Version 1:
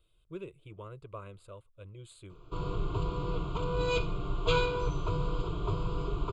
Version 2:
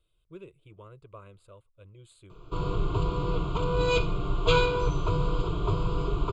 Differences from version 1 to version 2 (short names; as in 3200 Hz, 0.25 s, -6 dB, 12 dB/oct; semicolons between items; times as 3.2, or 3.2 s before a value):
speech -3.5 dB; background +5.0 dB